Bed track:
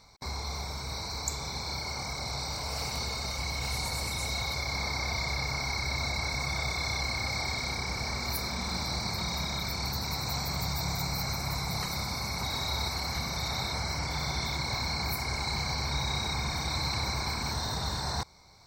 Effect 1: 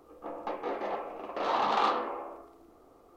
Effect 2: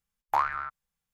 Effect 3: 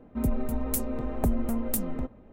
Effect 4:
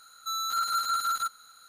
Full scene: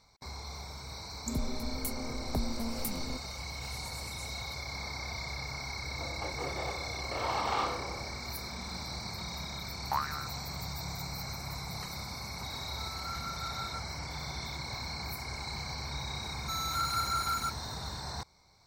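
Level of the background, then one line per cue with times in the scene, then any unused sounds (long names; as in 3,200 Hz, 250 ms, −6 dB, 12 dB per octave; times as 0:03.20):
bed track −7 dB
0:01.11: mix in 3 −7.5 dB
0:05.75: mix in 1 −5 dB
0:09.58: mix in 2 −7 dB
0:12.52: mix in 4 −13 dB + low-pass filter 3,800 Hz
0:16.22: mix in 4 −4.5 dB + one scale factor per block 5 bits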